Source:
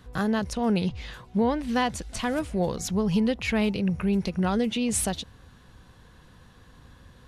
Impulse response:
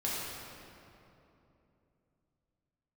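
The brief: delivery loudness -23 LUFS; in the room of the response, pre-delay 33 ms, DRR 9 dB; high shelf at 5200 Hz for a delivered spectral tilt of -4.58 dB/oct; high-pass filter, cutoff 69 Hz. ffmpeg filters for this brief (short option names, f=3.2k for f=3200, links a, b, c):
-filter_complex "[0:a]highpass=69,highshelf=f=5.2k:g=5,asplit=2[a][b];[1:a]atrim=start_sample=2205,adelay=33[c];[b][c]afir=irnorm=-1:irlink=0,volume=-15dB[d];[a][d]amix=inputs=2:normalize=0,volume=2.5dB"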